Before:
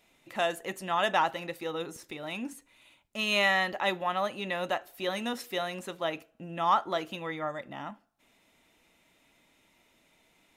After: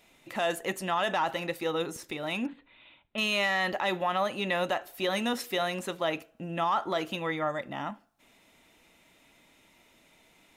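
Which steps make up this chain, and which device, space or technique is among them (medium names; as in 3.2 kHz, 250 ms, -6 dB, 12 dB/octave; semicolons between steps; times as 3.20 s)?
2.46–3.18 s: elliptic low-pass 3.7 kHz; soft clipper into limiter (saturation -14 dBFS, distortion -24 dB; peak limiter -23.5 dBFS, peak gain reduction 8 dB); trim +4.5 dB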